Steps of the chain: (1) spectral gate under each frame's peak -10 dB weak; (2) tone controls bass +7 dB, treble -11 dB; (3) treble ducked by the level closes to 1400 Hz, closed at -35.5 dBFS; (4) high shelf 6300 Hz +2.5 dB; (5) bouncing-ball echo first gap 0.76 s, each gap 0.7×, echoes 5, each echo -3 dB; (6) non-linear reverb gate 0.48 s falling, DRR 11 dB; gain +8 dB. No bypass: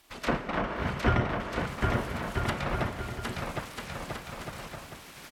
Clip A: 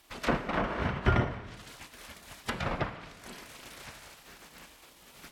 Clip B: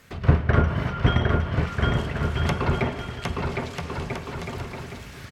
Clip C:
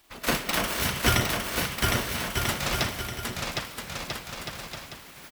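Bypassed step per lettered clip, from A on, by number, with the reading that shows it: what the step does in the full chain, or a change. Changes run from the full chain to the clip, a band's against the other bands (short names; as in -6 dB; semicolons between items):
5, momentary loudness spread change +9 LU; 1, 125 Hz band +6.5 dB; 3, 8 kHz band +15.0 dB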